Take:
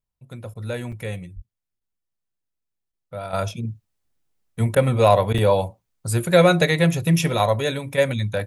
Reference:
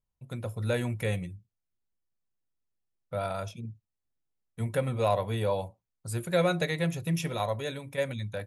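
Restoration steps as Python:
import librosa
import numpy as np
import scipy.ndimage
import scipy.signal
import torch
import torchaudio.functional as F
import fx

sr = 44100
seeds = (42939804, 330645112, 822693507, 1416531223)

y = fx.highpass(x, sr, hz=140.0, slope=24, at=(1.35, 1.47), fade=0.02)
y = fx.fix_interpolate(y, sr, at_s=(0.92, 5.38), length_ms=5.3)
y = fx.fix_interpolate(y, sr, at_s=(0.54, 1.8, 2.92, 4.75, 5.33), length_ms=11.0)
y = fx.gain(y, sr, db=fx.steps((0.0, 0.0), (3.33, -11.0)))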